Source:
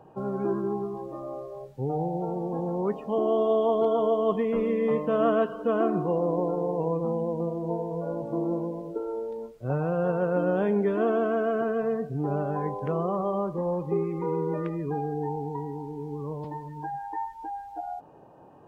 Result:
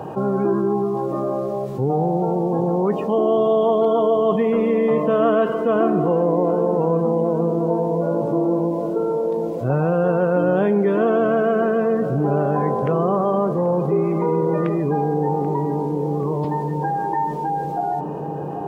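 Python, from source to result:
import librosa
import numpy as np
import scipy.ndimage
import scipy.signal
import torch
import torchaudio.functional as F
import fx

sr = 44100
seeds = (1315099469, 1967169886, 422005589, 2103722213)

y = scipy.signal.sosfilt(scipy.signal.butter(2, 67.0, 'highpass', fs=sr, output='sos'), x)
y = fx.echo_filtered(y, sr, ms=785, feedback_pct=77, hz=1400.0, wet_db=-14.5)
y = fx.env_flatten(y, sr, amount_pct=50)
y = y * 10.0 ** (5.0 / 20.0)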